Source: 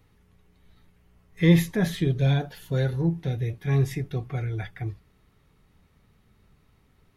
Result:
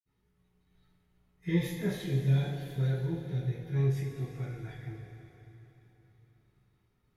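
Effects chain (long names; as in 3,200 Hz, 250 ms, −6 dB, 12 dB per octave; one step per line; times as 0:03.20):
downward expander −57 dBFS
convolution reverb RT60 3.7 s, pre-delay 46 ms, DRR −60 dB
level +5.5 dB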